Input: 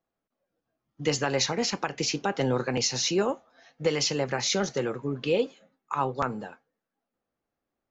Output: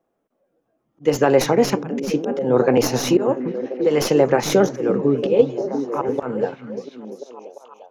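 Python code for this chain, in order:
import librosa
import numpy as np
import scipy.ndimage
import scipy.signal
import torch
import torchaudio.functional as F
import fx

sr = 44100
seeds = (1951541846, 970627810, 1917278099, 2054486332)

p1 = fx.tracing_dist(x, sr, depth_ms=0.039)
p2 = fx.level_steps(p1, sr, step_db=11)
p3 = p1 + (p2 * librosa.db_to_amplitude(-2.0))
p4 = fx.peak_eq(p3, sr, hz=4400.0, db=-6.5, octaves=0.39)
p5 = fx.auto_swell(p4, sr, attack_ms=197.0)
p6 = fx.peak_eq(p5, sr, hz=430.0, db=13.0, octaves=2.7)
p7 = p6 + fx.echo_stepped(p6, sr, ms=345, hz=170.0, octaves=0.7, feedback_pct=70, wet_db=-4.0, dry=0)
p8 = fx.band_squash(p7, sr, depth_pct=70, at=(5.41, 6.09))
y = p8 * librosa.db_to_amplitude(-1.0)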